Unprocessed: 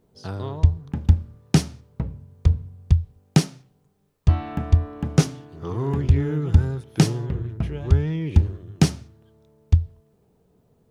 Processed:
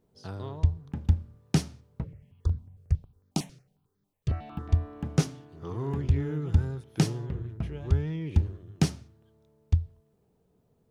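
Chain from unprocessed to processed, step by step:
0:02.10–0:02.48: healed spectral selection 1,700–3,400 Hz
0:02.04–0:04.69: step-sequenced phaser 11 Hz 230–2,700 Hz
level −7 dB

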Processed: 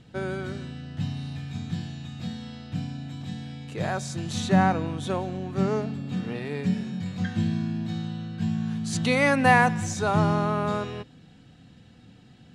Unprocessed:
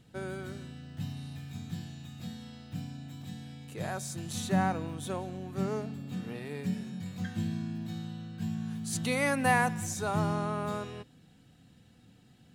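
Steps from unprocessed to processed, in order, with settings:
low-pass filter 5,800 Hz 12 dB per octave
level +7.5 dB

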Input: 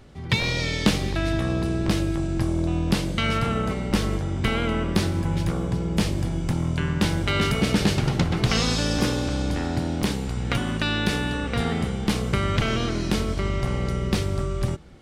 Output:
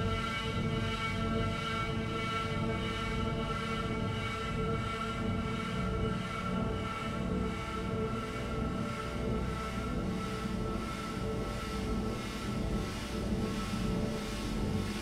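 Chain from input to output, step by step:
extreme stretch with random phases 25×, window 1.00 s, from 0:03.32
two-band tremolo in antiphase 1.5 Hz, depth 50%, crossover 940 Hz
level −8 dB

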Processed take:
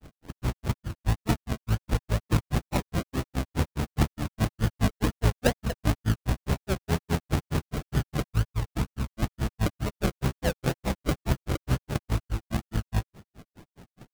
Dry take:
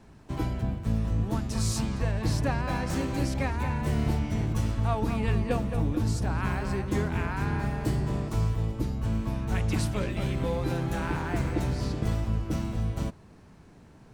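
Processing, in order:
variable-slope delta modulation 16 kbit/s
granular cloud 119 ms, grains 4.8 per second
sample-and-hold swept by an LFO 39×, swing 60% 2.1 Hz
level +6.5 dB

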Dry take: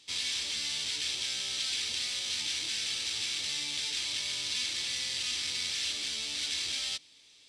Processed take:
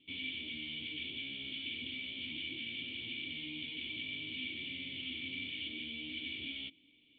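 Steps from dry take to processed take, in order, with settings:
wrong playback speed 24 fps film run at 25 fps
formant resonators in series i
level +11.5 dB

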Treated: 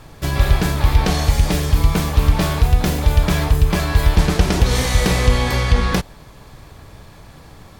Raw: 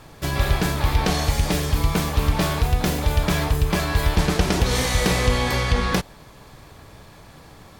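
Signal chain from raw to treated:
low-shelf EQ 110 Hz +6.5 dB
level +1.5 dB

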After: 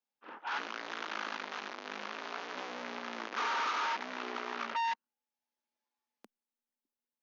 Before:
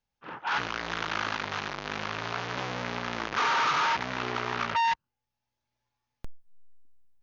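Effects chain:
elliptic high-pass filter 220 Hz, stop band 60 dB
level −7 dB

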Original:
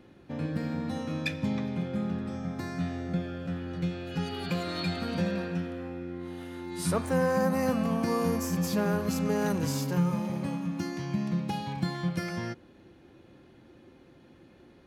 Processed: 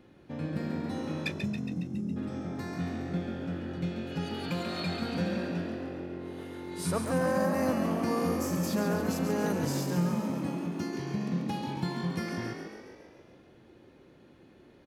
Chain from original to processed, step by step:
gain on a spectral selection 0:01.32–0:02.16, 230–5,000 Hz −23 dB
echo with shifted repeats 138 ms, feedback 61%, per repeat +48 Hz, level −7 dB
level −2.5 dB

